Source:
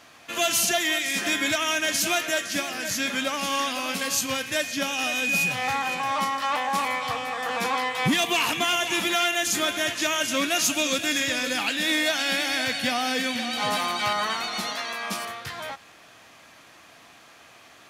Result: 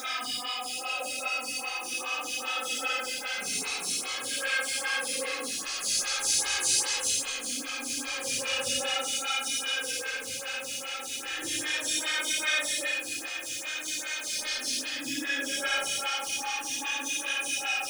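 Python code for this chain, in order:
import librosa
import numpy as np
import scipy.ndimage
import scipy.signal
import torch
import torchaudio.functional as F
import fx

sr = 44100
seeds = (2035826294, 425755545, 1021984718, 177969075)

p1 = fx.tracing_dist(x, sr, depth_ms=0.13)
p2 = fx.highpass(p1, sr, hz=72.0, slope=6)
p3 = fx.dereverb_blind(p2, sr, rt60_s=0.95)
p4 = scipy.signal.sosfilt(scipy.signal.cheby1(10, 1.0, 11000.0, 'lowpass', fs=sr, output='sos'), p3)
p5 = fx.high_shelf(p4, sr, hz=2400.0, db=11.0)
p6 = p5 + 0.86 * np.pad(p5, (int(2.4 * sr / 1000.0), 0))[:len(p5)]
p7 = fx.rider(p6, sr, range_db=10, speed_s=2.0)
p8 = fx.quant_dither(p7, sr, seeds[0], bits=6, dither='none')
p9 = fx.paulstretch(p8, sr, seeds[1], factor=14.0, window_s=0.05, from_s=3.7)
p10 = p9 + fx.echo_diffused(p9, sr, ms=1850, feedback_pct=61, wet_db=-7.5, dry=0)
p11 = fx.stagger_phaser(p10, sr, hz=2.5)
y = p11 * librosa.db_to_amplitude(-6.5)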